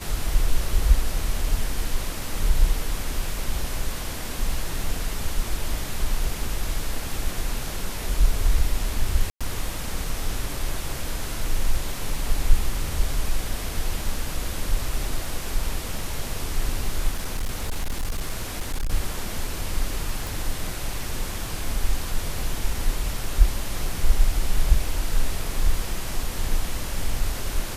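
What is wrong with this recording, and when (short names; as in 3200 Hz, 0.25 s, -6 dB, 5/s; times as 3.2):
9.3–9.41 gap 0.106 s
17.11–18.9 clipped -21.5 dBFS
20.27 pop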